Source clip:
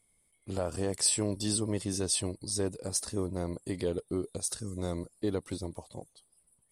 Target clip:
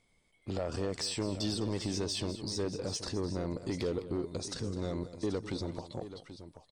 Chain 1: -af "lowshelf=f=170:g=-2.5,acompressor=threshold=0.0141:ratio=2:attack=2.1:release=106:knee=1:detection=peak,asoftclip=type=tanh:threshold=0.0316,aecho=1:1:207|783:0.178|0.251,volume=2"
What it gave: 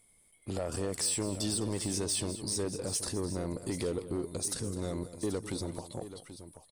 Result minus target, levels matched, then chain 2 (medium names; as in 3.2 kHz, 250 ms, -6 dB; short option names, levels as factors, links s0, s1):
8 kHz band +7.5 dB
-af "lowshelf=f=170:g=-2.5,acompressor=threshold=0.0141:ratio=2:attack=2.1:release=106:knee=1:detection=peak,lowpass=f=6000:w=0.5412,lowpass=f=6000:w=1.3066,asoftclip=type=tanh:threshold=0.0316,aecho=1:1:207|783:0.178|0.251,volume=2"